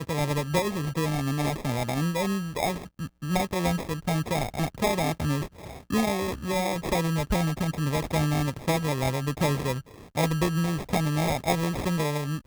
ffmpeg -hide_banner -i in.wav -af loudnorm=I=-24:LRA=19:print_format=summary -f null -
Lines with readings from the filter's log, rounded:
Input Integrated:    -27.5 LUFS
Input True Peak:     -12.9 dBTP
Input LRA:             1.3 LU
Input Threshold:     -37.5 LUFS